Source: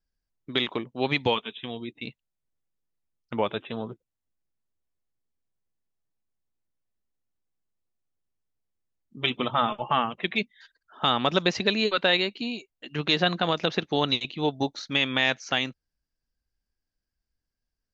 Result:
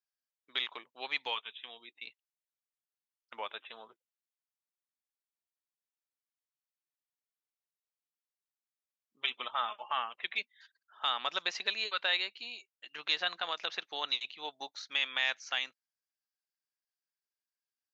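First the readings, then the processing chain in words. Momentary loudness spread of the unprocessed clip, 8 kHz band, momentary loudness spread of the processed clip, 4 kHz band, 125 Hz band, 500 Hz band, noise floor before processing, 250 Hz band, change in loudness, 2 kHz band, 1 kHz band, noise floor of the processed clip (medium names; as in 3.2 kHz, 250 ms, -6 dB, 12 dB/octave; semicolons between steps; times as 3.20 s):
13 LU, no reading, 16 LU, -6.5 dB, under -35 dB, -18.5 dB, under -85 dBFS, -29.0 dB, -8.0 dB, -7.0 dB, -9.5 dB, under -85 dBFS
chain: high-pass 1 kHz 12 dB/octave; trim -6.5 dB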